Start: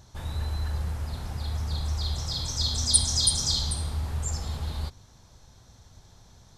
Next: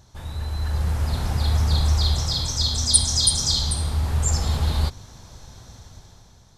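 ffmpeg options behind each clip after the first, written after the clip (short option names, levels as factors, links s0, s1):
-af "dynaudnorm=f=180:g=9:m=3.35"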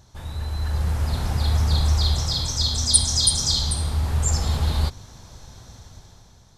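-af anull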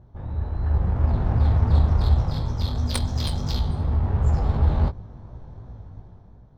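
-af "flanger=delay=16.5:depth=5.2:speed=2.8,adynamicsmooth=sensitivity=1:basefreq=840,volume=2.24"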